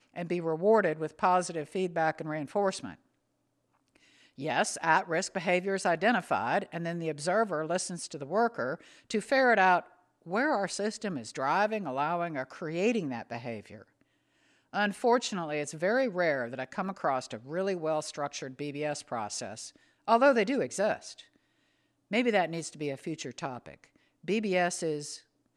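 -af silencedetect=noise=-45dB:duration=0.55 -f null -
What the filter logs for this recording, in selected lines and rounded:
silence_start: 2.95
silence_end: 3.96 | silence_duration: 1.01
silence_start: 13.82
silence_end: 14.73 | silence_duration: 0.91
silence_start: 21.21
silence_end: 22.11 | silence_duration: 0.90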